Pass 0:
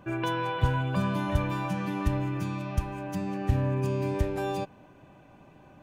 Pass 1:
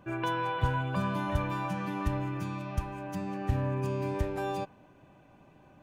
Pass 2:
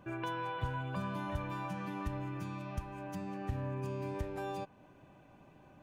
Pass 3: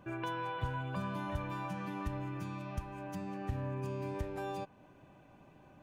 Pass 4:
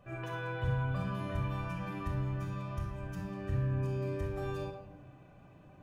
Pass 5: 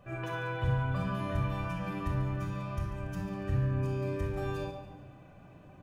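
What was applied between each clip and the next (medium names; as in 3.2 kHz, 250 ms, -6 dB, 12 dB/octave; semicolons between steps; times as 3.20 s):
dynamic bell 1.1 kHz, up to +4 dB, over -41 dBFS, Q 0.85; trim -4 dB
compression 1.5:1, threshold -43 dBFS, peak gain reduction 8 dB; trim -1.5 dB
no audible change
simulated room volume 3600 m³, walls furnished, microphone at 6.2 m; trim -5 dB
feedback delay 142 ms, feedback 43%, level -13 dB; trim +3 dB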